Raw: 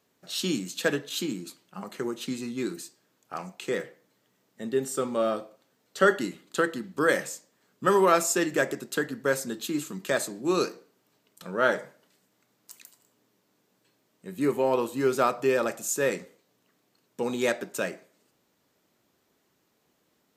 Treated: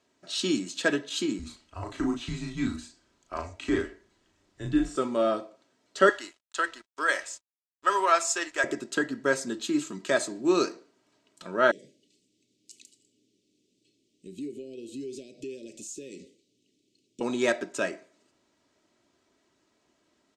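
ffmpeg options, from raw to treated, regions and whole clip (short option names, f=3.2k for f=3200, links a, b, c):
-filter_complex "[0:a]asettb=1/sr,asplit=3[a][b][c];[a]atrim=end=1.394[d];[b]atrim=start=1.39:end=4.96,asetpts=PTS-STARTPTS,afade=t=in:d=0.004:c=qsin,afade=t=out:st=3.566:d=0.004:c=qsin,acrossover=split=3400[e][f];[f]acompressor=threshold=-46dB:ratio=4:attack=1:release=60[g];[e][g]amix=inputs=2:normalize=0,asplit=2[h][i];[i]adelay=36,volume=-4dB[j];[h][j]amix=inputs=2:normalize=0,atrim=end_sample=157437,afreqshift=-97[k];[c]atrim=start=4.956[l];[d][k]acrossfade=d=0.004:c1=hsin:c2=qsin[m];[m][l]acrossfade=d=0.004:c1=qsin:c2=hsin,asettb=1/sr,asplit=3[n][o][p];[n]atrim=end=6.094[q];[o]atrim=start=6.09:end=8.64,asetpts=PTS-STARTPTS,afade=t=in:d=0.004:c=qsin,afade=t=out:st=2.546:d=0.004:c=qsin,highpass=760,aeval=exprs='sgn(val(0))*max(abs(val(0))-0.00266,0)':c=same[r];[p]atrim=start=8.636[s];[q][r]acrossfade=d=0.004:c1=hsin:c2=qsin[t];[t][s]acrossfade=d=0.004:c1=qsin:c2=hsin,asettb=1/sr,asplit=3[u][v][w];[u]atrim=end=11.714[x];[v]atrim=start=11.71:end=17.21,asetpts=PTS-STARTPTS,afade=t=in:d=0.004:c=qsin,afade=t=out:st=5.496:d=0.004:c=qsin,acompressor=threshold=-37dB:ratio=4:attack=3.2:release=140:knee=1:detection=peak,asuperstop=centerf=1100:order=8:qfactor=0.51[y];[w]atrim=start=17.206[z];[x][y]acrossfade=d=0.004:c1=hsin:c2=qsin[aa];[aa][z]acrossfade=d=0.004:c1=qsin:c2=hsin,lowpass=f=8.2k:w=0.5412,lowpass=f=8.2k:w=1.3066,aecho=1:1:3.1:0.47"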